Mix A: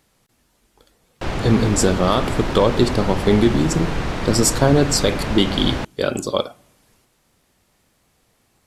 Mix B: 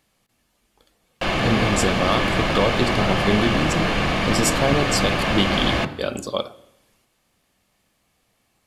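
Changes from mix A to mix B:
speech −5.5 dB
reverb: on, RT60 0.85 s

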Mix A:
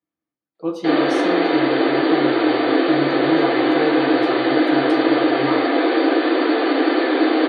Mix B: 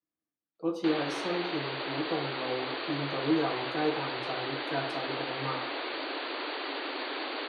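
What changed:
speech −7.0 dB
background: send off

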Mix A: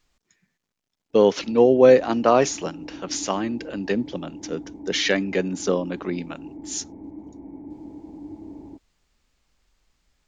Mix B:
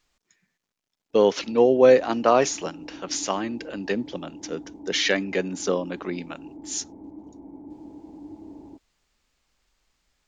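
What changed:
background: add flat-topped bell 2,300 Hz −10 dB 1 octave
master: add low-shelf EQ 300 Hz −6 dB

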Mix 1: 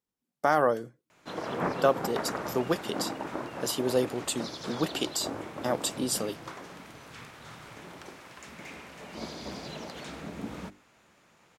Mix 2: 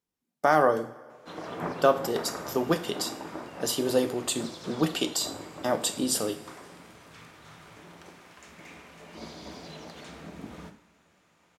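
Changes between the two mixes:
background −7.0 dB
reverb: on

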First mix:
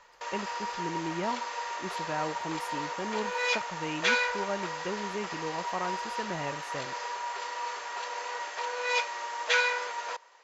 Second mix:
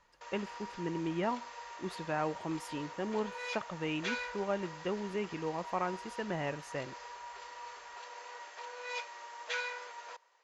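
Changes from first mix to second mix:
speech: add low-pass filter 11,000 Hz 24 dB per octave
background −11.5 dB

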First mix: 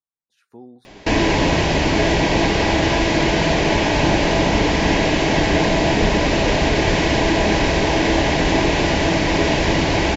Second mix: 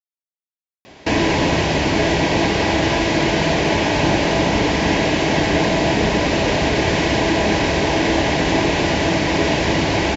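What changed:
speech: entry +0.90 s
master: add high-pass filter 63 Hz

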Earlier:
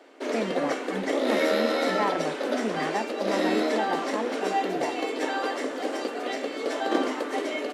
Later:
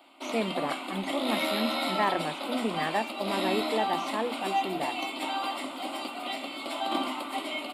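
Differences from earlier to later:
background: add phaser with its sweep stopped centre 1,700 Hz, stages 6
master: add high-shelf EQ 3,600 Hz +8.5 dB

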